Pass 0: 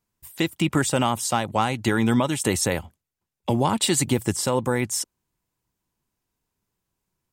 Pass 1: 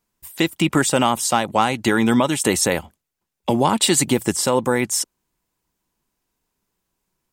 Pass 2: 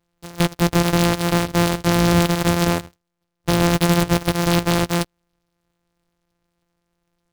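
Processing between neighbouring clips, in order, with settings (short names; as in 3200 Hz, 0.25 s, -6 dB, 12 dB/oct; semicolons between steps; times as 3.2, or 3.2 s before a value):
bell 99 Hz -9.5 dB 0.96 oct; gain +5 dB
sample sorter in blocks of 256 samples; soft clip -11.5 dBFS, distortion -14 dB; noise-modulated delay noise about 2600 Hz, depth 0.075 ms; gain +3 dB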